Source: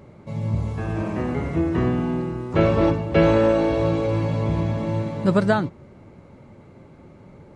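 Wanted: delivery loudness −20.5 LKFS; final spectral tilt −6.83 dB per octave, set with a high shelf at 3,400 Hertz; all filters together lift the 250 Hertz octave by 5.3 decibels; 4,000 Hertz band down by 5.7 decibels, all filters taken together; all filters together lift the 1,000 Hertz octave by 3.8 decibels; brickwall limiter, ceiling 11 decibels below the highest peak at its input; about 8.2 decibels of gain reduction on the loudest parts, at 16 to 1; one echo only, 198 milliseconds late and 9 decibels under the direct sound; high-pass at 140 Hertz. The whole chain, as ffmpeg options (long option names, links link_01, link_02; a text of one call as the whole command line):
ffmpeg -i in.wav -af "highpass=140,equalizer=frequency=250:width_type=o:gain=8,equalizer=frequency=1000:width_type=o:gain=5,highshelf=frequency=3400:gain=-3.5,equalizer=frequency=4000:width_type=o:gain=-6,acompressor=threshold=-17dB:ratio=16,alimiter=limit=-18.5dB:level=0:latency=1,aecho=1:1:198:0.355,volume=6dB" out.wav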